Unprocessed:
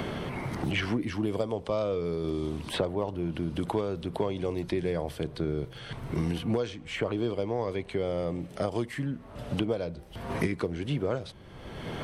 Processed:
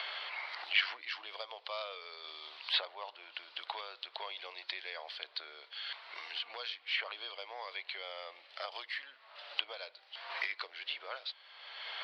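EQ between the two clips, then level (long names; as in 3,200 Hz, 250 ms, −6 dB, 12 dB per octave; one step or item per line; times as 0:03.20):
high-pass filter 630 Hz 24 dB per octave
elliptic low-pass filter 4,500 Hz, stop band 40 dB
first difference
+12.0 dB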